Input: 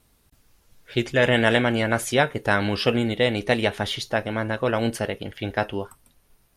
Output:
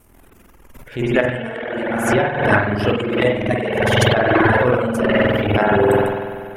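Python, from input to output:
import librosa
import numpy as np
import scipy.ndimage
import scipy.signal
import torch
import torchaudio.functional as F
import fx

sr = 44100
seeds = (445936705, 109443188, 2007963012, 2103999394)

y = fx.peak_eq(x, sr, hz=4100.0, db=-14.0, octaves=0.87)
y = fx.rev_spring(y, sr, rt60_s=2.9, pass_ms=(48,), chirp_ms=40, drr_db=-8.0)
y = fx.dereverb_blind(y, sr, rt60_s=1.6)
y = fx.over_compress(y, sr, threshold_db=-22.0, ratio=-0.5)
y = fx.transient(y, sr, attack_db=-9, sustain_db=12)
y = y * librosa.db_to_amplitude(5.0)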